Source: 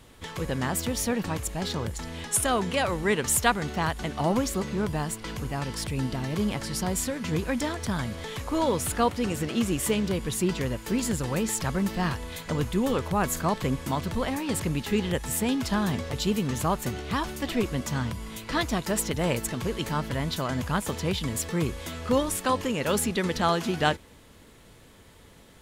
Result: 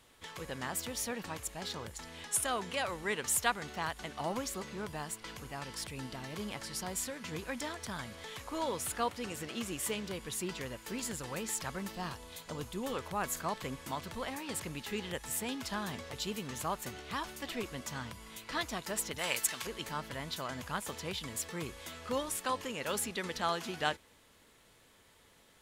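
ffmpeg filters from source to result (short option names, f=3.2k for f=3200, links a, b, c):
-filter_complex "[0:a]asettb=1/sr,asplit=3[a][b][c];[a]atrim=end=11.924[d];[b]atrim=start=11.92:end=12.83,asetpts=PTS-STARTPTS,afade=t=in:d=0.004:c=qsin,afade=t=out:st=0.906:d=0.004:c=qsin,equalizer=f=1.9k:w=1.4:g=-6.5[e];[c]atrim=start=12.826[f];[d][e]acrossfade=d=0.004:c1=hsin:c2=qsin[g];[g][f]acrossfade=d=0.004:c1=qsin:c2=hsin,asettb=1/sr,asplit=3[h][i][j];[h]atrim=end=19.184[k];[i]atrim=start=19.18:end=19.67,asetpts=PTS-STARTPTS,afade=t=in:d=0.004:c=qsin,afade=t=out:st=0.486:d=0.004:c=qsin,tiltshelf=f=720:g=-8.5[l];[j]atrim=start=19.666[m];[k][l]acrossfade=d=0.004:c1=hsin:c2=qsin[n];[n][m]acrossfade=d=0.004:c1=qsin:c2=hsin,lowshelf=f=410:g=-10.5,volume=-6.5dB"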